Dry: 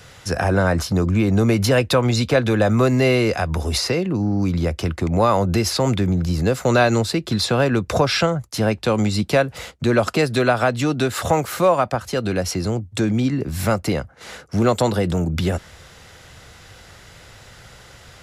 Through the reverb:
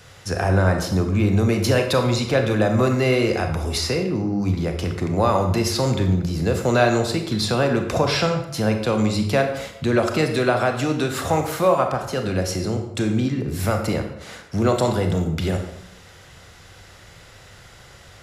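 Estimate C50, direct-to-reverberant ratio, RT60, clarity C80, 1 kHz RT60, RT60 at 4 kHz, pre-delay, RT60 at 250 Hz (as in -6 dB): 7.0 dB, 4.5 dB, 0.75 s, 9.5 dB, 0.75 s, 0.60 s, 27 ms, 0.90 s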